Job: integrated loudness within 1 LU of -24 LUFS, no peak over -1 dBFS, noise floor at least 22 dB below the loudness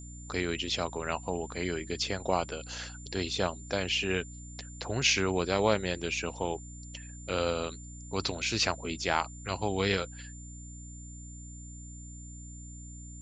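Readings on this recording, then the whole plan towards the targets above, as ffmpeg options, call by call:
hum 60 Hz; harmonics up to 300 Hz; hum level -43 dBFS; steady tone 7200 Hz; tone level -49 dBFS; loudness -31.5 LUFS; peak -10.0 dBFS; loudness target -24.0 LUFS
-> -af "bandreject=f=60:t=h:w=4,bandreject=f=120:t=h:w=4,bandreject=f=180:t=h:w=4,bandreject=f=240:t=h:w=4,bandreject=f=300:t=h:w=4"
-af "bandreject=f=7.2k:w=30"
-af "volume=7.5dB"

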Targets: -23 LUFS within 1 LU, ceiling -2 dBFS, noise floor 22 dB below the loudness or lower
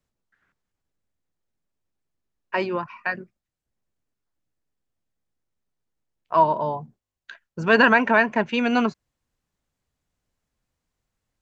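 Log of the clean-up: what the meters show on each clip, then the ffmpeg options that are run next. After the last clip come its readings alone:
loudness -21.5 LUFS; peak -3.5 dBFS; loudness target -23.0 LUFS
-> -af "volume=-1.5dB"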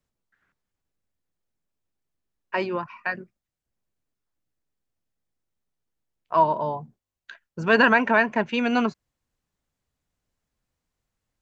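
loudness -23.0 LUFS; peak -5.0 dBFS; noise floor -87 dBFS

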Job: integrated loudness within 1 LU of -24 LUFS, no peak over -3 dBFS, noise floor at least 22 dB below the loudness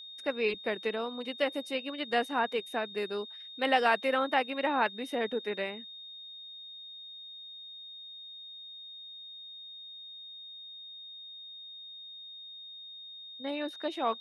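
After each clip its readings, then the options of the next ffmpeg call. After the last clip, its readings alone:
steady tone 3700 Hz; tone level -44 dBFS; loudness -34.5 LUFS; peak -13.0 dBFS; loudness target -24.0 LUFS
-> -af "bandreject=f=3.7k:w=30"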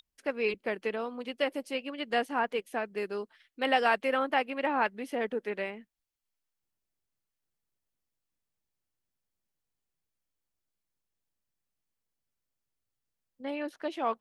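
steady tone none; loudness -32.0 LUFS; peak -13.0 dBFS; loudness target -24.0 LUFS
-> -af "volume=8dB"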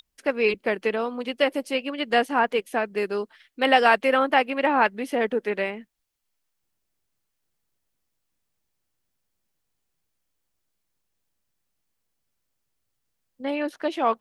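loudness -24.0 LUFS; peak -5.0 dBFS; noise floor -78 dBFS

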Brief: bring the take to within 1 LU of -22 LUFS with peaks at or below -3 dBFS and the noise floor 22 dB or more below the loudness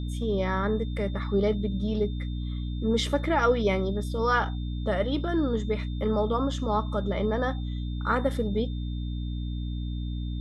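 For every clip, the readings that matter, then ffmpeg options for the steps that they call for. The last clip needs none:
hum 60 Hz; harmonics up to 300 Hz; hum level -29 dBFS; steady tone 3600 Hz; tone level -49 dBFS; loudness -28.0 LUFS; peak -10.5 dBFS; loudness target -22.0 LUFS
-> -af "bandreject=f=60:t=h:w=6,bandreject=f=120:t=h:w=6,bandreject=f=180:t=h:w=6,bandreject=f=240:t=h:w=6,bandreject=f=300:t=h:w=6"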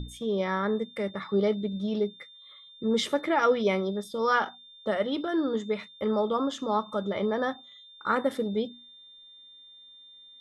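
hum none; steady tone 3600 Hz; tone level -49 dBFS
-> -af "bandreject=f=3.6k:w=30"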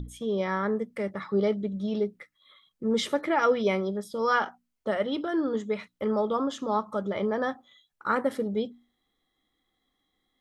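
steady tone none; loudness -28.5 LUFS; peak -12.0 dBFS; loudness target -22.0 LUFS
-> -af "volume=6.5dB"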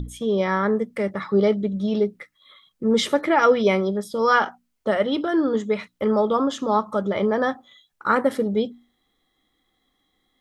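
loudness -22.0 LUFS; peak -5.5 dBFS; noise floor -72 dBFS

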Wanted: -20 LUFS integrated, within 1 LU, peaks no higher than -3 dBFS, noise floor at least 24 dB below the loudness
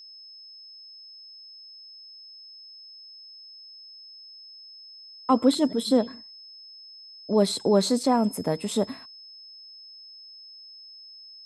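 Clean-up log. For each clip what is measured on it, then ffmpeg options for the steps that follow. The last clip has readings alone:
steady tone 5200 Hz; tone level -44 dBFS; loudness -24.0 LUFS; peak -9.0 dBFS; loudness target -20.0 LUFS
-> -af "bandreject=f=5.2k:w=30"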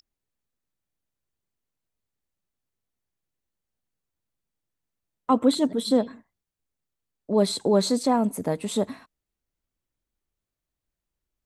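steady tone none; loudness -24.0 LUFS; peak -9.0 dBFS; loudness target -20.0 LUFS
-> -af "volume=4dB"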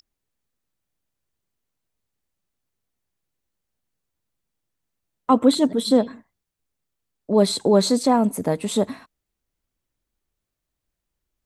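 loudness -20.0 LUFS; peak -5.0 dBFS; noise floor -82 dBFS

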